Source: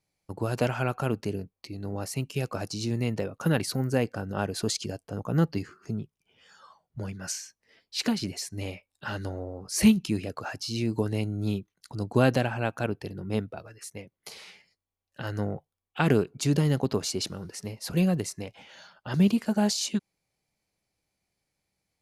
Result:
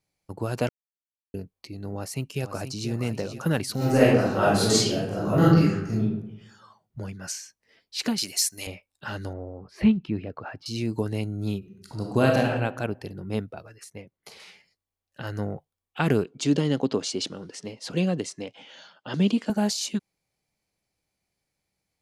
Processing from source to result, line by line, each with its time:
0.69–1.34 mute
1.95–2.9 echo throw 0.48 s, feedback 55%, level -9.5 dB
3.77–6.01 reverb throw, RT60 0.84 s, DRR -9.5 dB
8.18–8.67 tilt +4.5 dB/oct
9.33–10.66 air absorption 400 m
11.58–12.5 reverb throw, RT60 0.94 s, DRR 1 dB
13.84–14.4 high shelf 3700 Hz -6.5 dB
16.25–19.5 speaker cabinet 160–8400 Hz, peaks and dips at 280 Hz +6 dB, 490 Hz +4 dB, 3200 Hz +7 dB

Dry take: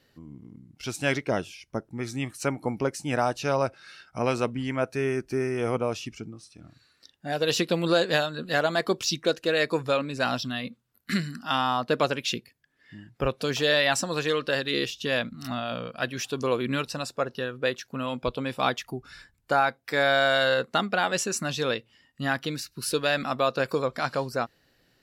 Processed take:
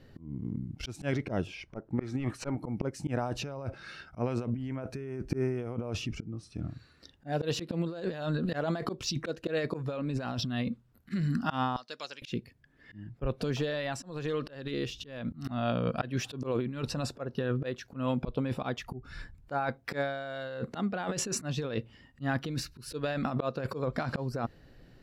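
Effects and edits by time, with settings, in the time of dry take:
1.47–2.55 overdrive pedal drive 14 dB, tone 1400 Hz, clips at -12 dBFS
11.76–12.22 band-pass 5500 Hz, Q 2.4
13.42–15.39 compressor 8:1, threshold -35 dBFS
whole clip: tilt -3 dB/oct; auto swell 0.318 s; negative-ratio compressor -32 dBFS, ratio -1

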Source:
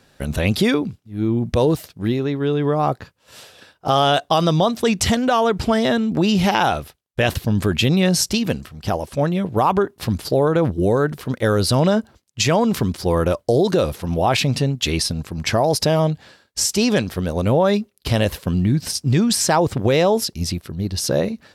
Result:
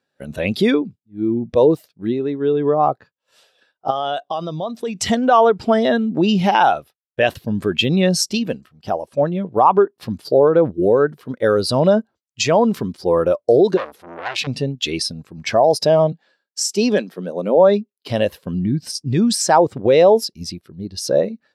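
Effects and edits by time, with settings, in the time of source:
3.9–4.95 compressor 4:1, threshold -20 dBFS
13.77–14.47 core saturation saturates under 2500 Hz
16.12–18.1 elliptic high-pass 170 Hz
whole clip: HPF 340 Hz 6 dB/oct; spectral expander 1.5:1; gain +2 dB

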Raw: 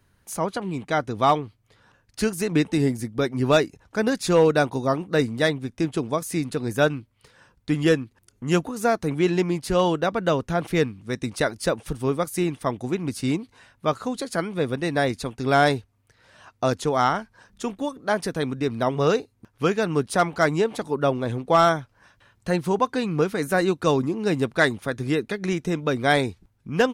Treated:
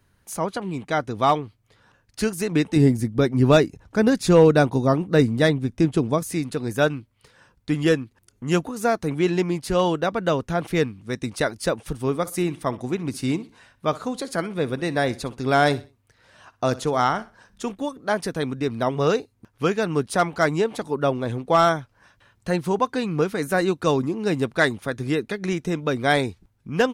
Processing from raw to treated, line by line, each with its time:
2.76–6.33 low shelf 370 Hz +8 dB
12.08–17.72 feedback echo 62 ms, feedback 32%, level -18.5 dB

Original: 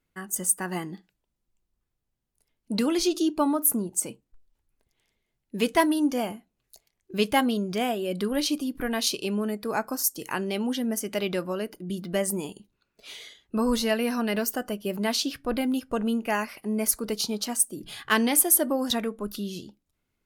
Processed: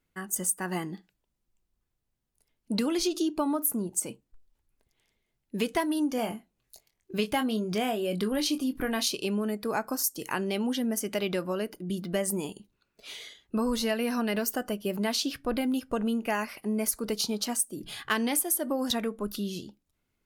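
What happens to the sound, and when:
6.16–9.06 doubler 23 ms -9 dB
whole clip: compressor 6:1, threshold -24 dBFS

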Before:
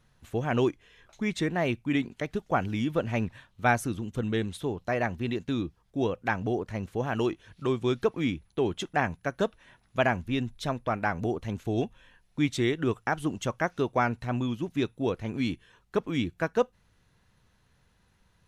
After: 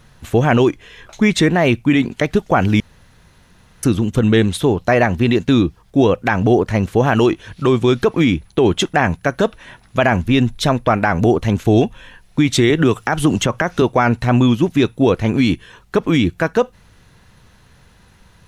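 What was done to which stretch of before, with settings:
2.8–3.83 room tone
12.7–13.82 three-band squash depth 100%
whole clip: maximiser +20 dB; gain -3 dB

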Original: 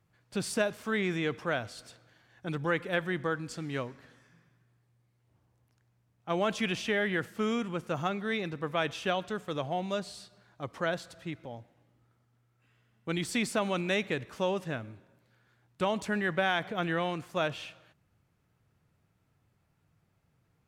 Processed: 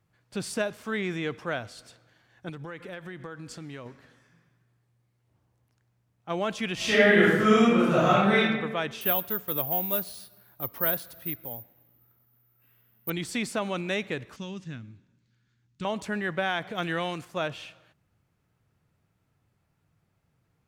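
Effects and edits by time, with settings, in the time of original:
2.49–3.86 compressor 5:1, threshold -36 dBFS
6.75–8.37 reverb throw, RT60 1.2 s, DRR -11 dB
9.01–13.1 careless resampling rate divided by 3×, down filtered, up zero stuff
14.36–15.85 EQ curve 240 Hz 0 dB, 630 Hz -20 dB, 900 Hz -14 dB, 1700 Hz -8 dB, 3700 Hz -3 dB, 6700 Hz 0 dB, 13000 Hz -23 dB
16.7–17.25 high shelf 3000 Hz +8.5 dB

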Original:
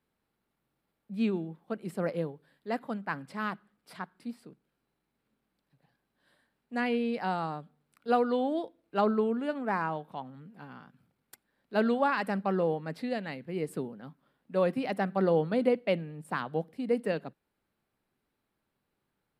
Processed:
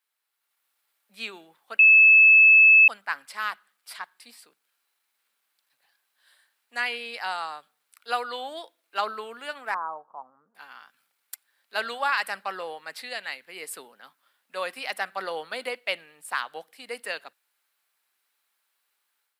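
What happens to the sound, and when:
1.79–2.88 bleep 2610 Hz -20 dBFS
4–4.43 notch 1400 Hz, Q 6.7
9.74–10.55 elliptic low-pass 1200 Hz, stop band 70 dB
whole clip: HPF 1200 Hz 12 dB/oct; high shelf 4000 Hz +8.5 dB; AGC gain up to 7 dB

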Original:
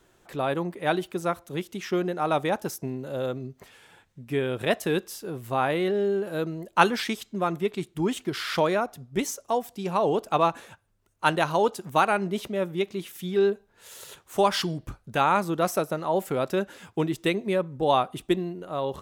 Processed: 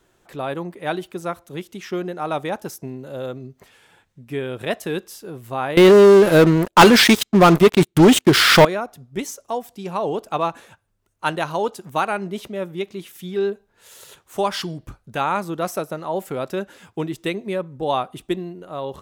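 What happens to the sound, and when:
5.77–8.65 sample leveller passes 5

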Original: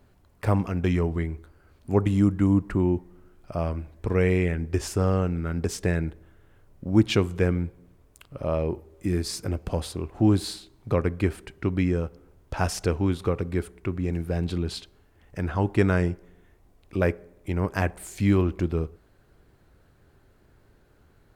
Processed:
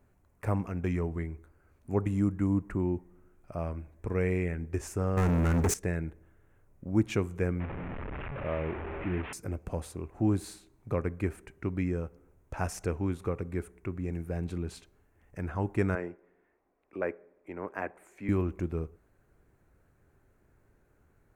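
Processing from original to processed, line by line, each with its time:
5.17–5.74 sample leveller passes 5
7.6–9.33 delta modulation 16 kbps, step -24.5 dBFS
15.95–18.29 three-band isolator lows -21 dB, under 250 Hz, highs -16 dB, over 2800 Hz
whole clip: band shelf 3900 Hz -9 dB 1 oct; gain -7 dB

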